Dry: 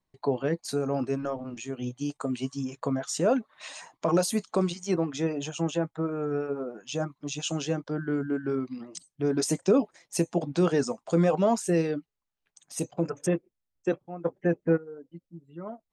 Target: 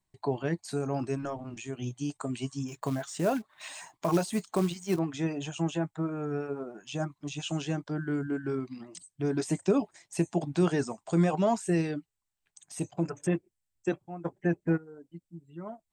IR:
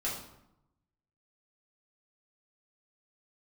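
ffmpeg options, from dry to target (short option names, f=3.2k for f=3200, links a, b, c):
-filter_complex "[0:a]acrossover=split=3400[a][b];[b]acompressor=threshold=-47dB:ratio=4:attack=1:release=60[c];[a][c]amix=inputs=2:normalize=0,equalizer=f=100:t=o:w=0.33:g=6,equalizer=f=250:t=o:w=0.33:g=-5,equalizer=f=500:t=o:w=0.33:g=-11,equalizer=f=1.25k:t=o:w=0.33:g=-4,equalizer=f=8k:t=o:w=0.33:g=10,asettb=1/sr,asplit=3[d][e][f];[d]atrim=end=2.684[g];[e]atrim=start=2.68:end=4.99,asetpts=PTS-STARTPTS,afade=t=in:d=0.004:c=qsin,afade=t=out:st=2.306:d=0.004:c=qsin,acrusher=bits=5:mode=log:mix=0:aa=0.000001[h];[f]atrim=start=4.986[i];[g][h]acrossfade=d=0.004:c1=hsin:c2=qsin[j];[j][i]acrossfade=d=0.004:c1=qsin:c2=hsin"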